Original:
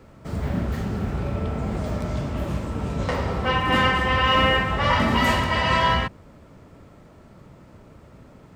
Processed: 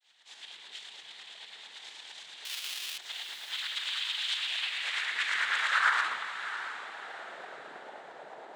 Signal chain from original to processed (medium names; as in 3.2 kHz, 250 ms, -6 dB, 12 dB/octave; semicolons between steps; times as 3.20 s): high-pass 230 Hz 12 dB/octave; bass shelf 400 Hz +10.5 dB; peak limiter -17 dBFS, peak gain reduction 12.5 dB; tremolo saw up 9 Hz, depth 95%; simulated room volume 3700 m³, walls furnished, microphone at 5 m; one-sided clip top -29.5 dBFS; noise-vocoded speech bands 6; 2.45–2.98 s: Schmitt trigger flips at -39.5 dBFS; high-pass sweep 3.2 kHz -> 630 Hz, 4.33–7.37 s; on a send: echo that smears into a reverb 684 ms, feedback 45%, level -11 dB; on the sum: trim -2.5 dB